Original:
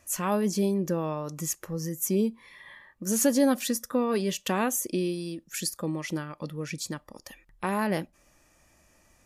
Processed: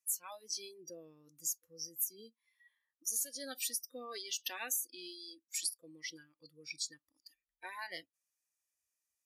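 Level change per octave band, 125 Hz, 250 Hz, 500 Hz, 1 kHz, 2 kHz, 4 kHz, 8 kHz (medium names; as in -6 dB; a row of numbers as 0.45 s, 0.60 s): under -30 dB, -29.5 dB, -23.0 dB, -18.0 dB, -10.0 dB, -4.5 dB, -5.5 dB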